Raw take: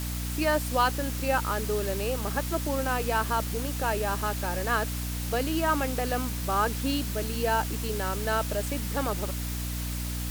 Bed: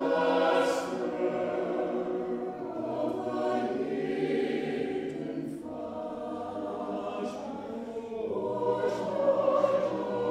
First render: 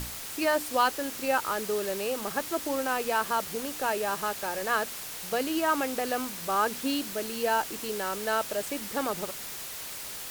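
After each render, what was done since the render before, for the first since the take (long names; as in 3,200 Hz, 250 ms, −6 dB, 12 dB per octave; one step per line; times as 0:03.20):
mains-hum notches 60/120/180/240/300 Hz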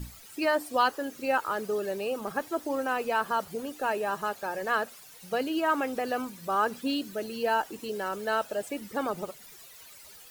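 broadband denoise 15 dB, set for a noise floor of −39 dBFS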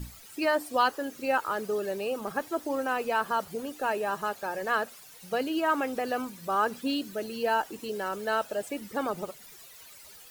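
no processing that can be heard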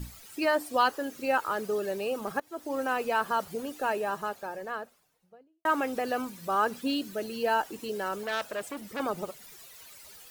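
0:02.40–0:02.83: fade in, from −22.5 dB
0:03.77–0:05.65: fade out and dull
0:08.23–0:09.00: saturating transformer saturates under 2,400 Hz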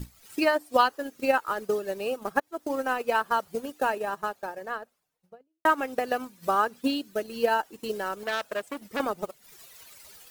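transient designer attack +7 dB, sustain −10 dB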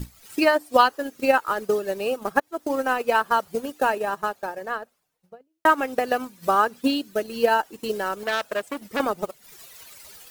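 level +4.5 dB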